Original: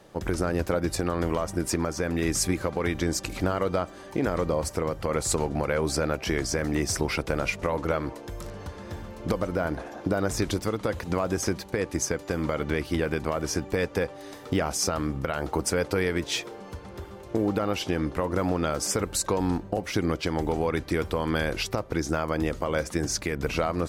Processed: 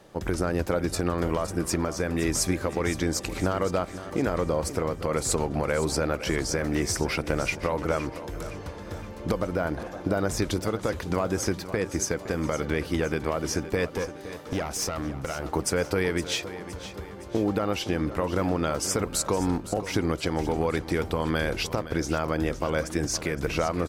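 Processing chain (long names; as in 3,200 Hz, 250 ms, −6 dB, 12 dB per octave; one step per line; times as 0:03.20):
0:13.87–0:15.45: tube saturation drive 21 dB, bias 0.45
repeating echo 515 ms, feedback 48%, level −13.5 dB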